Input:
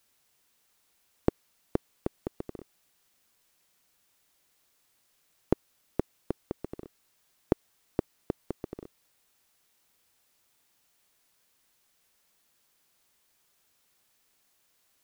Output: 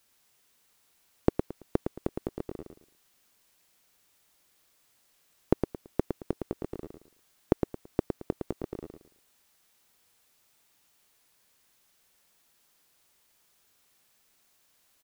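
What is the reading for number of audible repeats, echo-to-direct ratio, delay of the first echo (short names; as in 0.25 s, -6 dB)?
3, -5.5 dB, 0.111 s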